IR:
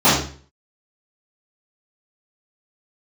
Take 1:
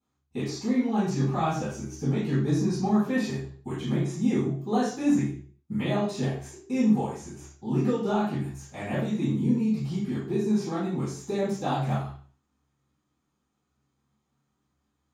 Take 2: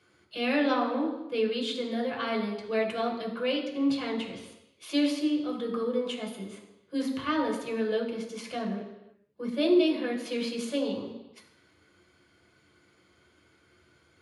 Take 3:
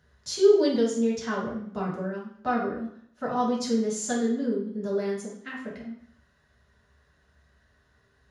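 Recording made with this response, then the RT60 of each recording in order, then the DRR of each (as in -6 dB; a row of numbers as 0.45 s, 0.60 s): 1; 0.45 s, no single decay rate, 0.65 s; -15.0 dB, -1.0 dB, -6.0 dB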